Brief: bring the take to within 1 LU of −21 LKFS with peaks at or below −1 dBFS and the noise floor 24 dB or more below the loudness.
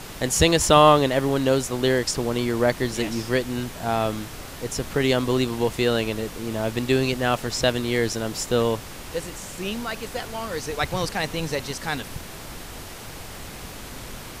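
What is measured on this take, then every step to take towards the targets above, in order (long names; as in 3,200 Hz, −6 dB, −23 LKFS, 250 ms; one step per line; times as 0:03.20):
background noise floor −38 dBFS; target noise floor −48 dBFS; integrated loudness −23.5 LKFS; sample peak −1.0 dBFS; target loudness −21.0 LKFS
→ noise reduction from a noise print 10 dB
level +2.5 dB
brickwall limiter −1 dBFS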